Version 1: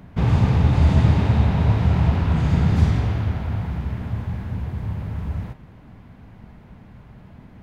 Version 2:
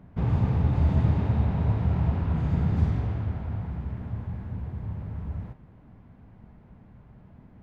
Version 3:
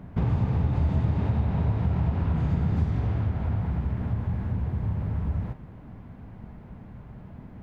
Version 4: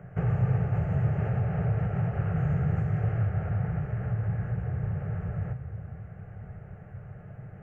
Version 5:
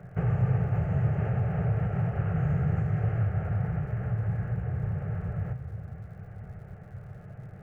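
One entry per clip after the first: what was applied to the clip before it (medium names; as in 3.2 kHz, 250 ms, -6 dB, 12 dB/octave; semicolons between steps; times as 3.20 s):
treble shelf 2.2 kHz -12 dB; trim -6.5 dB
compression 3:1, threshold -31 dBFS, peak gain reduction 11 dB; trim +7.5 dB
static phaser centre 980 Hz, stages 6; reverberation RT60 3.5 s, pre-delay 3 ms, DRR 13.5 dB; trim -2.5 dB
crackle 130 per s -57 dBFS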